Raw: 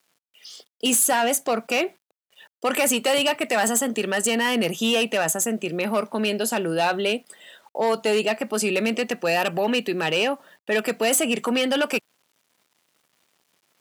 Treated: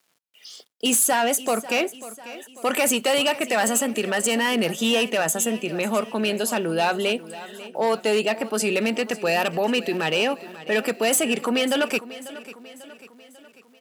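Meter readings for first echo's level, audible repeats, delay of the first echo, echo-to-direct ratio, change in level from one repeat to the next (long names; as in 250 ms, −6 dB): −16.5 dB, 4, 544 ms, −15.0 dB, −6.0 dB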